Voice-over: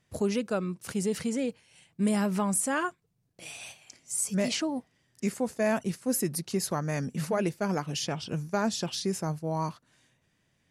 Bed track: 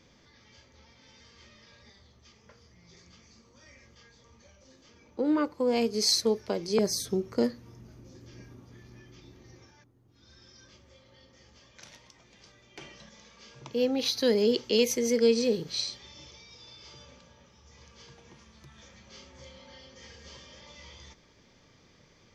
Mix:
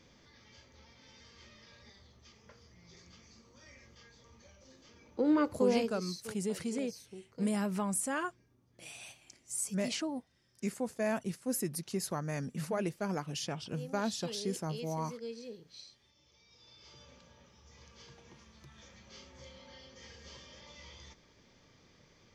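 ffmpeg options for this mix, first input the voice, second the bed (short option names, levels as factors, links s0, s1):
-filter_complex "[0:a]adelay=5400,volume=0.501[s0];[1:a]volume=5.96,afade=t=out:st=5.63:d=0.41:silence=0.11885,afade=t=in:st=16.23:d=1.12:silence=0.141254[s1];[s0][s1]amix=inputs=2:normalize=0"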